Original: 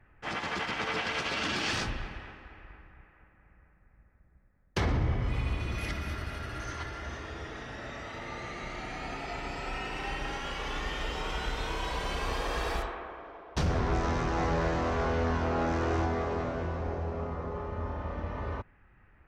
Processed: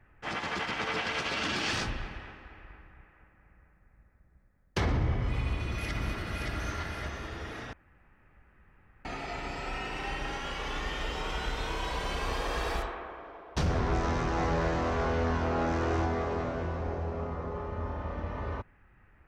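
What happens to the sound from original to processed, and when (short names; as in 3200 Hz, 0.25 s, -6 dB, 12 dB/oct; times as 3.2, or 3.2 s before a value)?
5.37–6.51 echo throw 0.57 s, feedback 45%, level -2.5 dB
7.73–9.05 room tone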